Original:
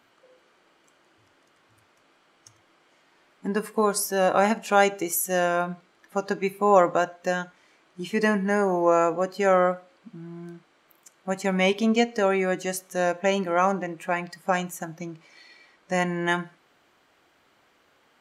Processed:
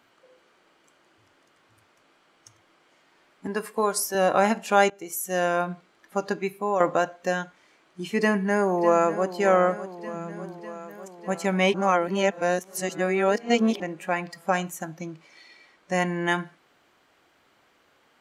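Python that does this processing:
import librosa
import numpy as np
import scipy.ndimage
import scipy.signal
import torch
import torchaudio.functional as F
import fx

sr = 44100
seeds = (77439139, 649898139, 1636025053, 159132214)

y = fx.highpass(x, sr, hz=330.0, slope=6, at=(3.47, 4.15))
y = fx.echo_throw(y, sr, start_s=8.18, length_s=1.16, ms=600, feedback_pct=70, wet_db=-13.0)
y = fx.edit(y, sr, fx.fade_in_from(start_s=4.9, length_s=0.59, floor_db=-17.0),
    fx.fade_out_to(start_s=6.27, length_s=0.53, floor_db=-9.5),
    fx.reverse_span(start_s=11.74, length_s=2.06), tone=tone)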